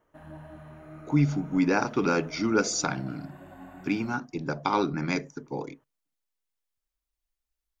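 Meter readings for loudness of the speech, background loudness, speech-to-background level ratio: -28.0 LUFS, -47.5 LUFS, 19.5 dB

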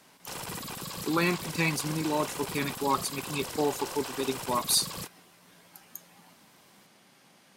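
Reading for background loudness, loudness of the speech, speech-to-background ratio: -37.5 LUFS, -30.0 LUFS, 7.5 dB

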